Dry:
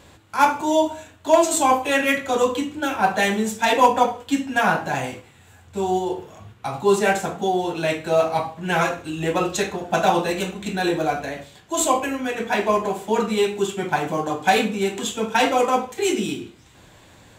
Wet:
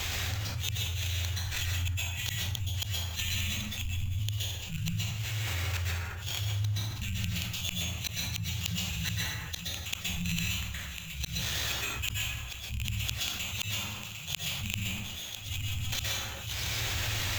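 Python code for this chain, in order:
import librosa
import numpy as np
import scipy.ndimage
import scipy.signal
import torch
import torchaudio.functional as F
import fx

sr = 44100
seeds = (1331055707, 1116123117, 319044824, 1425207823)

p1 = fx.rattle_buzz(x, sr, strikes_db=-29.0, level_db=-14.0)
p2 = fx.env_lowpass_down(p1, sr, base_hz=550.0, full_db=-13.5)
p3 = scipy.signal.sosfilt(scipy.signal.cheby1(4, 1.0, [110.0, 3000.0], 'bandstop', fs=sr, output='sos'), p2)
p4 = fx.high_shelf(p3, sr, hz=7400.0, db=9.5)
p5 = fx.hum_notches(p4, sr, base_hz=50, count=4)
p6 = fx.rider(p5, sr, range_db=10, speed_s=2.0)
p7 = p5 + (p6 * librosa.db_to_amplitude(-2.5))
p8 = fx.gate_flip(p7, sr, shuts_db=-27.0, range_db=-42)
p9 = fx.sample_hold(p8, sr, seeds[0], rate_hz=10000.0, jitter_pct=0)
p10 = fx.rev_plate(p9, sr, seeds[1], rt60_s=0.67, hf_ratio=0.6, predelay_ms=110, drr_db=-4.0)
y = fx.env_flatten(p10, sr, amount_pct=70)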